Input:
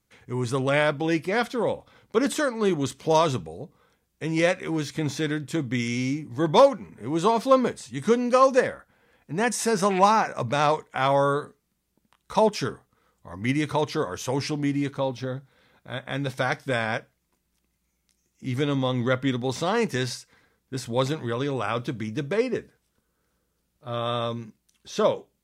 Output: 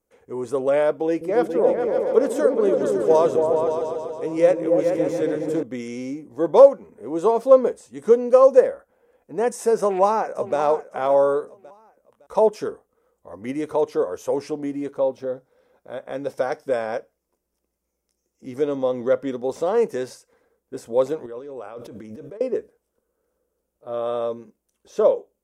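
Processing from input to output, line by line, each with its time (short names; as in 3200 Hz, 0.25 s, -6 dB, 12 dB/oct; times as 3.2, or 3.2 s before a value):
1.07–5.63 repeats that get brighter 0.14 s, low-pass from 200 Hz, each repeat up 2 oct, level 0 dB
9.79–10.58 echo throw 0.56 s, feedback 35%, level -13.5 dB
15.34–19.46 bell 5300 Hz +6.5 dB 0.28 oct
21.26–22.41 negative-ratio compressor -36 dBFS
whole clip: graphic EQ 125/500/2000/4000 Hz -12/+12/-5/-10 dB; gain -3.5 dB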